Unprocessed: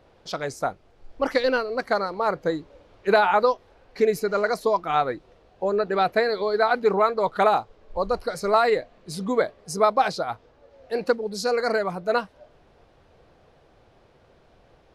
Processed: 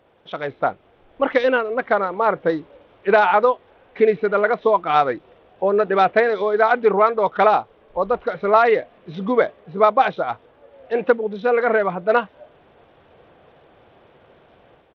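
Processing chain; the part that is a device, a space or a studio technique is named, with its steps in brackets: Bluetooth headset (HPF 170 Hz 6 dB/oct; AGC gain up to 7 dB; downsampling 8000 Hz; SBC 64 kbps 32000 Hz)

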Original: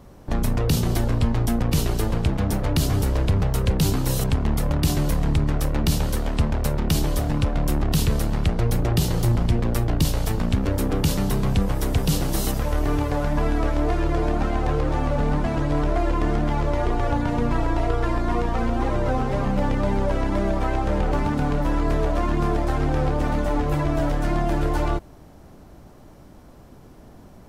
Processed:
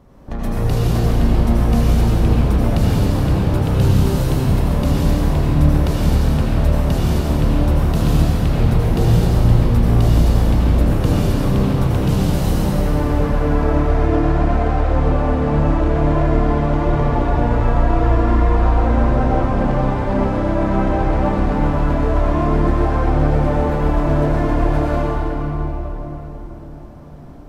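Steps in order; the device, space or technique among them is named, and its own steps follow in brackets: swimming-pool hall (reverb RT60 4.4 s, pre-delay 74 ms, DRR -7.5 dB; high shelf 3100 Hz -8 dB); gain -2.5 dB

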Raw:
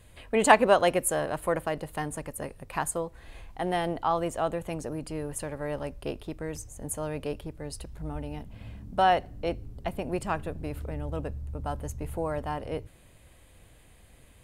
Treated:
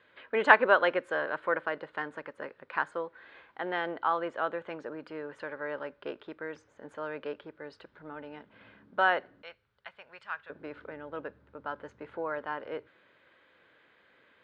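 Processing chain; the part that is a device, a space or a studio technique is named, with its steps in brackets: 9.42–10.5 passive tone stack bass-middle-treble 10-0-10; phone earpiece (speaker cabinet 420–3400 Hz, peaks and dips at 720 Hz -9 dB, 1500 Hz +9 dB, 2700 Hz -5 dB)

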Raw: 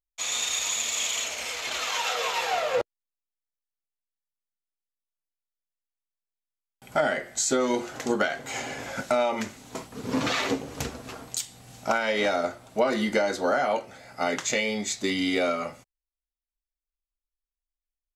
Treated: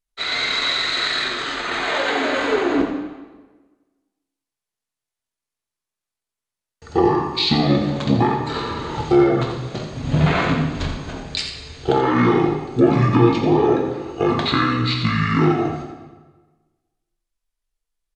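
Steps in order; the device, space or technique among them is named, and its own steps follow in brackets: monster voice (pitch shift -9.5 st; low shelf 160 Hz +4.5 dB; echo 84 ms -9 dB; reverb RT60 1.3 s, pre-delay 3 ms, DRR 2 dB); gain +5.5 dB

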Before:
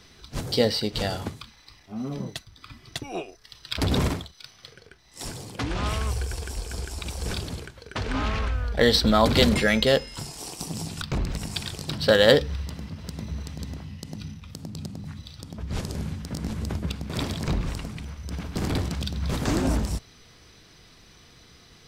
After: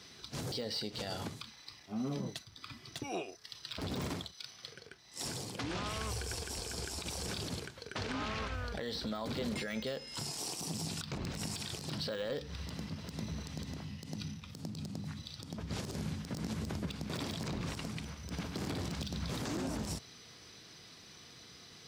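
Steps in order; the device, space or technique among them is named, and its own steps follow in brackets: broadcast voice chain (HPF 110 Hz 12 dB/oct; de-esser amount 65%; compressor 4:1, threshold -29 dBFS, peak gain reduction 12.5 dB; bell 5100 Hz +4 dB 1.3 oct; limiter -25.5 dBFS, peak gain reduction 10 dB); gain -3 dB

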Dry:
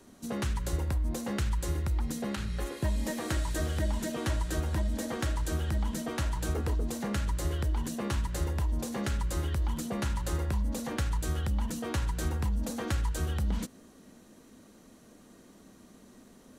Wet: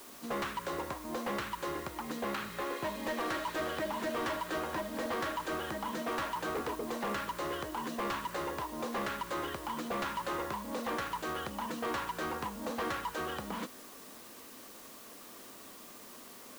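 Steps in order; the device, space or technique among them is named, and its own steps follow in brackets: drive-through speaker (BPF 370–3000 Hz; bell 1100 Hz +7 dB 0.42 oct; hard clip -35.5 dBFS, distortion -10 dB; white noise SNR 15 dB); gain +4.5 dB

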